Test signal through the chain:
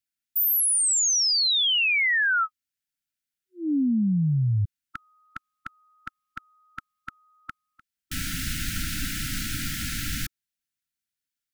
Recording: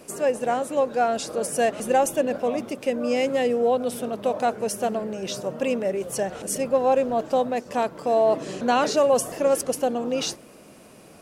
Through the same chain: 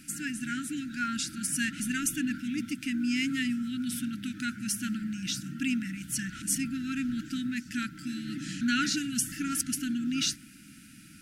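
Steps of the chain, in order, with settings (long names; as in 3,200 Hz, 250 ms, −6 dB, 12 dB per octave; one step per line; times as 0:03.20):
linear-phase brick-wall band-stop 320–1,300 Hz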